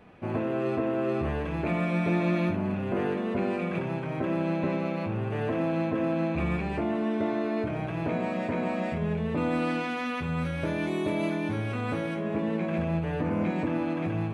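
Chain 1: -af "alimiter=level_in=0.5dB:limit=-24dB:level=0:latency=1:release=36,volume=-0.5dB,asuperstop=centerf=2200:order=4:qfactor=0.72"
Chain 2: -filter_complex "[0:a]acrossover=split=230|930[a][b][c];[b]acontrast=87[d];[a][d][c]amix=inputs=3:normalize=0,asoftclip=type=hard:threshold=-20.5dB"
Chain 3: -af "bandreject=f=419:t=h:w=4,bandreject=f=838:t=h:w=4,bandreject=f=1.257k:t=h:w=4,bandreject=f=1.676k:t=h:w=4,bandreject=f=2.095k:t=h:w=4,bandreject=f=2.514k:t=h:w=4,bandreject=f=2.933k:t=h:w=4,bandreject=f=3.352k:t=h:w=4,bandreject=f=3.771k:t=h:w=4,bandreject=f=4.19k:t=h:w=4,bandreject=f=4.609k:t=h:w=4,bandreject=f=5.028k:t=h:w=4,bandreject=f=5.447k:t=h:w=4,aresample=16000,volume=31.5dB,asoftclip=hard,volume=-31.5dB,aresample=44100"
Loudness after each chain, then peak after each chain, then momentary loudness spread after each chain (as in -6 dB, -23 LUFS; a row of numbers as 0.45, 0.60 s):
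-33.0, -26.0, -34.0 LUFS; -24.0, -20.5, -30.0 dBFS; 2, 3, 1 LU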